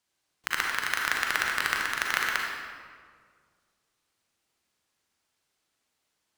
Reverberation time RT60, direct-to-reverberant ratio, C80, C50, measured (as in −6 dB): 1.9 s, −1.5 dB, 2.0 dB, 0.0 dB